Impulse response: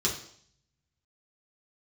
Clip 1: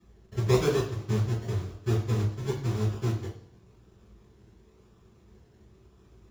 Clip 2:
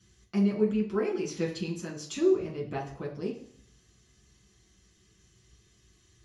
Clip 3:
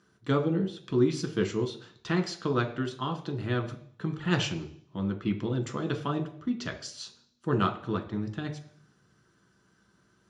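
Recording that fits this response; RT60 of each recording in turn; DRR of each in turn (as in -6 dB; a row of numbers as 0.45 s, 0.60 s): 2; 0.60 s, 0.60 s, 0.60 s; -14.5 dB, -4.5 dB, 3.0 dB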